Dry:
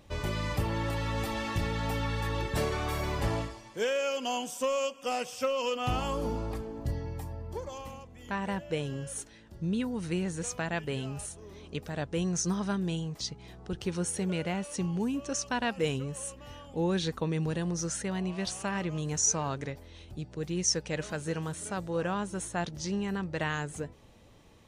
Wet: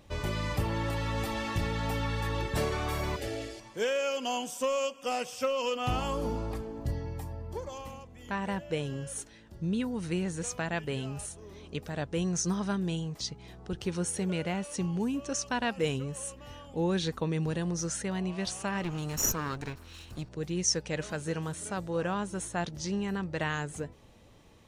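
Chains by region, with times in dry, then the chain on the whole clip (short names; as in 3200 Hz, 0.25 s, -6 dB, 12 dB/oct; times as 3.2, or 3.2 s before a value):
3.16–3.6 HPF 160 Hz 6 dB/oct + fixed phaser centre 420 Hz, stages 4 + sustainer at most 51 dB/s
18.84–20.29 minimum comb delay 0.72 ms + mismatched tape noise reduction encoder only
whole clip: dry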